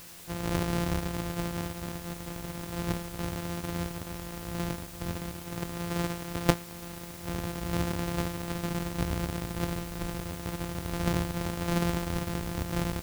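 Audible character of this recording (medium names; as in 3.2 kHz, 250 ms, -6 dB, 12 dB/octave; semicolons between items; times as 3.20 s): a buzz of ramps at a fixed pitch in blocks of 256 samples; tremolo saw down 2.2 Hz, depth 50%; a quantiser's noise floor 8-bit, dither triangular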